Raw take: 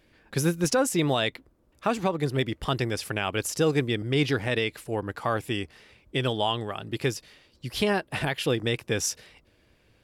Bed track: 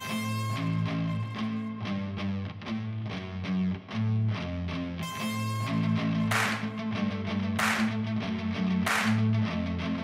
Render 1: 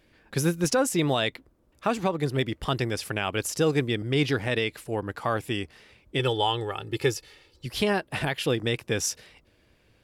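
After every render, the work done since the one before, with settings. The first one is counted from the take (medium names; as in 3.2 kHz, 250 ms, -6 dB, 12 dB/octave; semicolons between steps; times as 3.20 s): 6.19–7.66 s: comb 2.3 ms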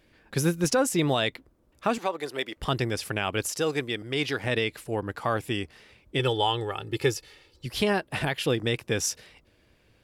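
1.98–2.57 s: high-pass 480 Hz; 3.48–4.44 s: bass shelf 290 Hz -11.5 dB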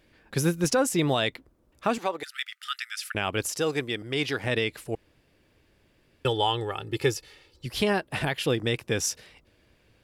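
2.23–3.15 s: brick-wall FIR high-pass 1.2 kHz; 4.95–6.25 s: room tone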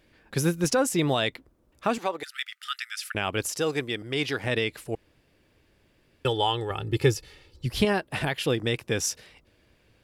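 6.70–7.85 s: bass shelf 220 Hz +9.5 dB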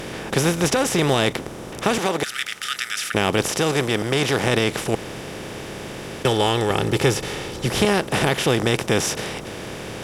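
spectral levelling over time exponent 0.4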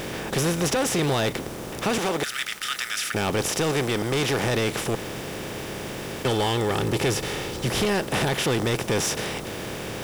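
bit crusher 7-bit; saturation -18 dBFS, distortion -10 dB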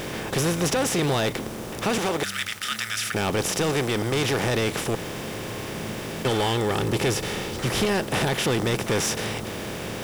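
add bed track -11 dB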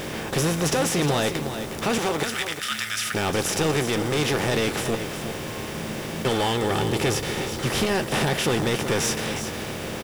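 doubling 13 ms -11 dB; delay 360 ms -9.5 dB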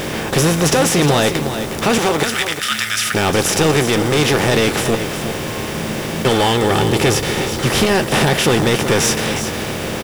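trim +8.5 dB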